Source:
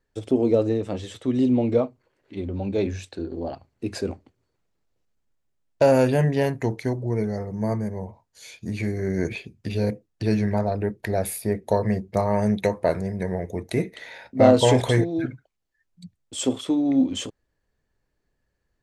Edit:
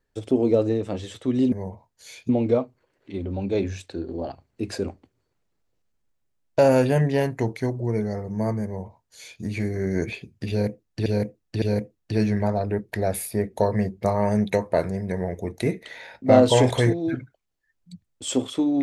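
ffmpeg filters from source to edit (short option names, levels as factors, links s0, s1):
-filter_complex "[0:a]asplit=5[s0][s1][s2][s3][s4];[s0]atrim=end=1.522[s5];[s1]atrim=start=7.878:end=8.652[s6];[s2]atrim=start=1.518:end=10.292[s7];[s3]atrim=start=9.728:end=10.292[s8];[s4]atrim=start=9.728[s9];[s5][s6]acrossfade=d=0.004:c1=hsin:c2=hsin[s10];[s10][s7]acrossfade=d=0.004:c1=hsin:c2=hsin[s11];[s11][s8]acrossfade=d=0.004:c1=hsin:c2=hsin[s12];[s12][s9]acrossfade=d=0.004:c1=hsin:c2=hsin"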